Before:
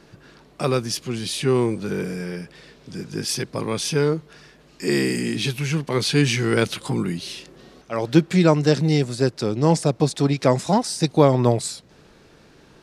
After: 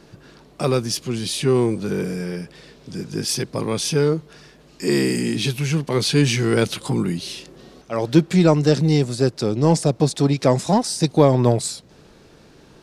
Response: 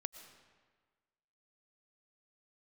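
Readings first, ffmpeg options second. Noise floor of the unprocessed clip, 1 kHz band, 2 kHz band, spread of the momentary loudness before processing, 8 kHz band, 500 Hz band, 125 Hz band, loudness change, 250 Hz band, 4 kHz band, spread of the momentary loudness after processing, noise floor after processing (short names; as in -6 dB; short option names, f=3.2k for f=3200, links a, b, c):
-52 dBFS, 0.0 dB, -1.0 dB, 13 LU, +2.5 dB, +1.5 dB, +2.0 dB, +1.5 dB, +2.0 dB, +1.5 dB, 12 LU, -50 dBFS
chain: -filter_complex "[0:a]equalizer=f=1.8k:w=0.82:g=-3.5,asplit=2[a][b];[b]asoftclip=type=tanh:threshold=-17dB,volume=-8dB[c];[a][c]amix=inputs=2:normalize=0"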